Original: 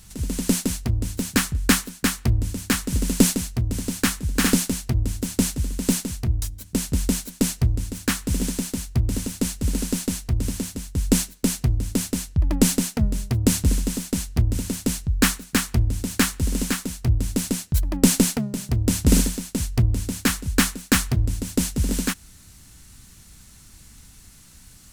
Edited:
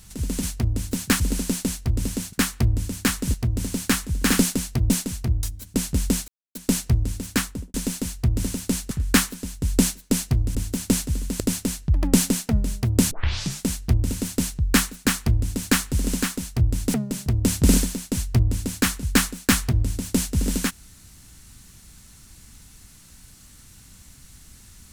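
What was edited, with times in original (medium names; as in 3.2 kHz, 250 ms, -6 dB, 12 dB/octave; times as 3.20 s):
0.43–0.69 s: delete
1.46–1.98 s: swap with 9.63–10.76 s
2.99–3.48 s: delete
5.04–5.89 s: move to 11.88 s
7.27 s: insert silence 0.27 s
8.11–8.46 s: studio fade out
13.59 s: tape start 0.53 s
17.42–18.37 s: delete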